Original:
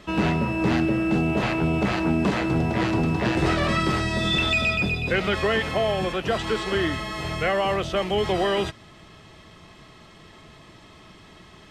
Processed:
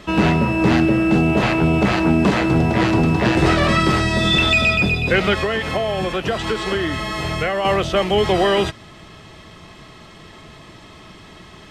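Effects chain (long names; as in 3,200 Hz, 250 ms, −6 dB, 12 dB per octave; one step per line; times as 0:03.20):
0:05.33–0:07.65: downward compressor, threshold −24 dBFS, peak gain reduction 6 dB
level +6.5 dB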